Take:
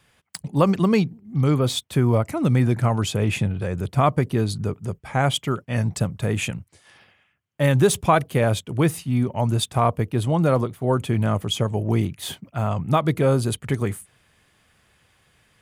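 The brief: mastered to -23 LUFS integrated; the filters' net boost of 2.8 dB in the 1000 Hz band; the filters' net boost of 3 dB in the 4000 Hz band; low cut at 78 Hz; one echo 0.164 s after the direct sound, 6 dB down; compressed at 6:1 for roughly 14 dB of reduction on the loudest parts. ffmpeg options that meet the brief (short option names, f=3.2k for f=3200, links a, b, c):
-af "highpass=78,equalizer=f=1k:t=o:g=3.5,equalizer=f=4k:t=o:g=3.5,acompressor=threshold=-26dB:ratio=6,aecho=1:1:164:0.501,volume=7dB"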